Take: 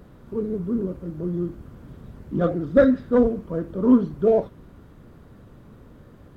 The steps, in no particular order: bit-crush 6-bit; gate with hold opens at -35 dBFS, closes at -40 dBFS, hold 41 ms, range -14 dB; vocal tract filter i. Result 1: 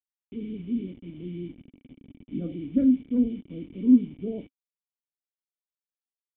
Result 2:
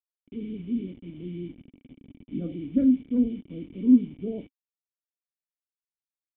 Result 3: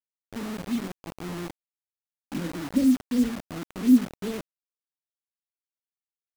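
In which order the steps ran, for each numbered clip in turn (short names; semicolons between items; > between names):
gate with hold > bit-crush > vocal tract filter; bit-crush > gate with hold > vocal tract filter; gate with hold > vocal tract filter > bit-crush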